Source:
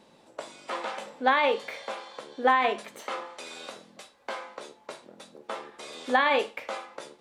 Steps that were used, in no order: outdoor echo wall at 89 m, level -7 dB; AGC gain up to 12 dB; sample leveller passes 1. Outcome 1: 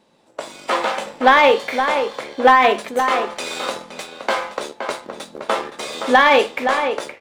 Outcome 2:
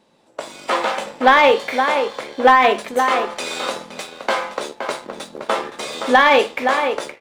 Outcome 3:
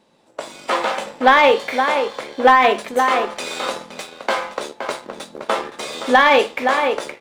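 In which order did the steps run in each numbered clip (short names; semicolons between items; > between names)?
sample leveller > AGC > outdoor echo; AGC > outdoor echo > sample leveller; outdoor echo > sample leveller > AGC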